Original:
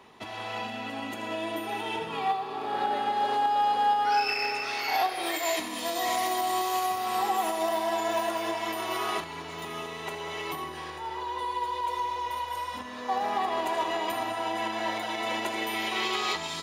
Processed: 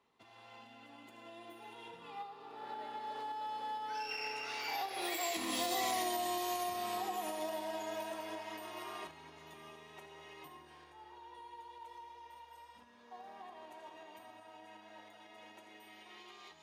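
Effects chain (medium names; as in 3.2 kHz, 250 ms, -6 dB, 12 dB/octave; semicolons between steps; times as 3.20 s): Doppler pass-by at 5.96 s, 14 m/s, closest 2 m; compression 6:1, threshold -42 dBFS, peak gain reduction 15.5 dB; dynamic bell 1.2 kHz, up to -5 dB, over -52 dBFS, Q 0.76; trim +11 dB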